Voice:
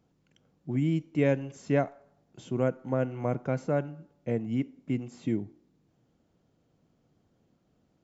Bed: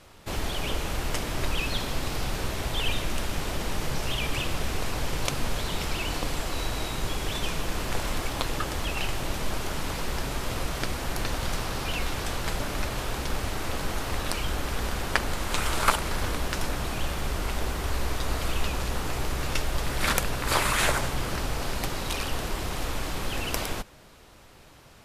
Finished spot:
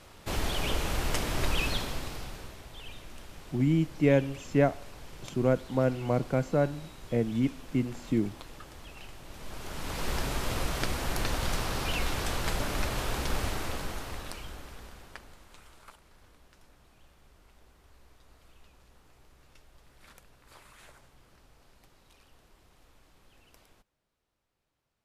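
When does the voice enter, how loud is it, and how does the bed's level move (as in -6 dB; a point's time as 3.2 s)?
2.85 s, +2.0 dB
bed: 1.66 s -0.5 dB
2.65 s -17.5 dB
9.24 s -17.5 dB
10.09 s -1 dB
13.46 s -1 dB
15.89 s -30.5 dB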